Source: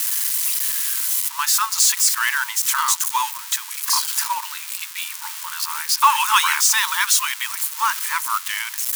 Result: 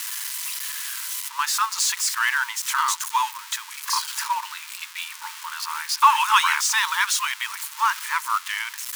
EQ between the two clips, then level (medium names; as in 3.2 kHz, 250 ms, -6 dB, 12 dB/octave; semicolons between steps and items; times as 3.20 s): low-pass 3.5 kHz 6 dB/octave; 0.0 dB